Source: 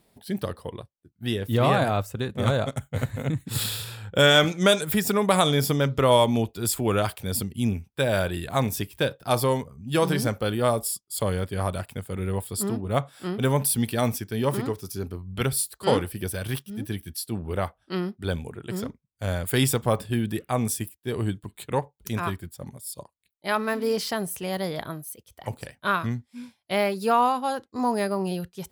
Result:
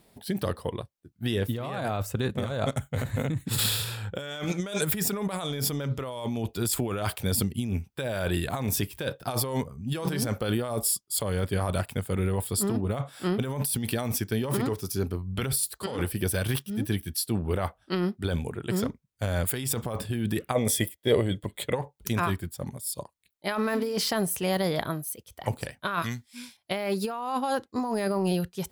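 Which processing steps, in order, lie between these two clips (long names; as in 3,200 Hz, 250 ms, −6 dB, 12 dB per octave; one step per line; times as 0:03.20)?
0:26.02–0:26.57: tilt shelving filter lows −9.5 dB, about 1,500 Hz
compressor whose output falls as the input rises −28 dBFS, ratio −1
0:20.54–0:21.74: hollow resonant body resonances 550/2,000/3,300 Hz, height 17 dB → 13 dB, ringing for 25 ms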